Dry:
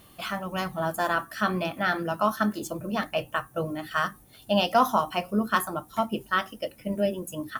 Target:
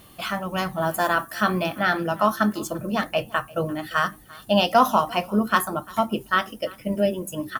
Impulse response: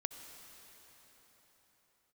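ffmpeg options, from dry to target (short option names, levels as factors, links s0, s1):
-filter_complex "[0:a]asettb=1/sr,asplit=3[s0][s1][s2];[s0]atrim=end=0.804[s3];[s1]atrim=start=0.8:end=1.79,asetpts=PTS-STARTPTS,afade=t=in:d=0.004:c=qsin,afade=t=out:st=0.986:d=0.004:c=qsin,highshelf=f=11000:g=6[s4];[s2]atrim=start=1.786[s5];[s3][s4]acrossfade=d=0.004:c1=hsin:c2=qsin[s6];[s6][s5]acrossfade=d=0.004:c1=qsin:c2=hsin,aecho=1:1:345:0.075,volume=1.58"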